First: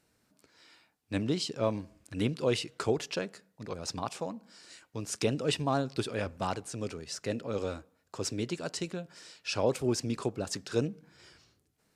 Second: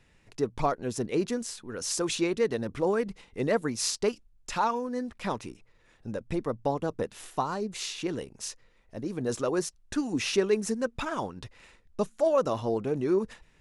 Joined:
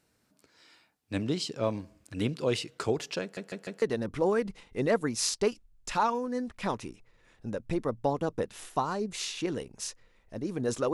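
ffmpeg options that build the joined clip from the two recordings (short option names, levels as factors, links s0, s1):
-filter_complex "[0:a]apad=whole_dur=10.93,atrim=end=10.93,asplit=4[s0][s1][s2][s3];[s0]atrim=end=3.372[s4];[s1]atrim=start=3.218:end=3.372[s5];[s2]atrim=start=3.218:end=3.372[s6];[s3]atrim=start=3.218:end=3.372[s7];[1:a]atrim=start=2.428:end=9.54[s8];[s4][s5]acrossfade=d=0.004:c1=hsin:c2=hsin[s9];[s9][s6]acrossfade=d=0.004:c1=hsin:c2=hsin[s10];[s10][s7]acrossfade=d=0.004:c1=hsin:c2=hsin[s11];[s11][s8]acrossfade=d=0.004:c1=hsin:c2=hsin"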